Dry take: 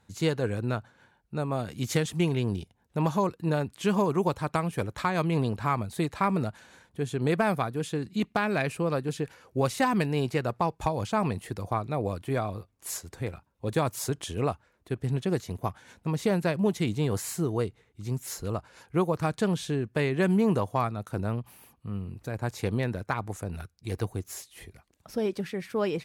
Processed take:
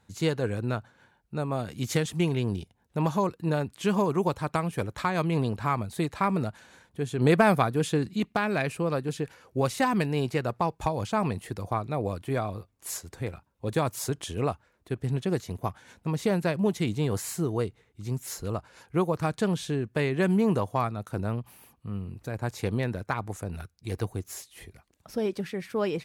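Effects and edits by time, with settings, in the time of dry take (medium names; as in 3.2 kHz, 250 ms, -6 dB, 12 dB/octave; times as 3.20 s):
7.18–8.14 s: gain +5 dB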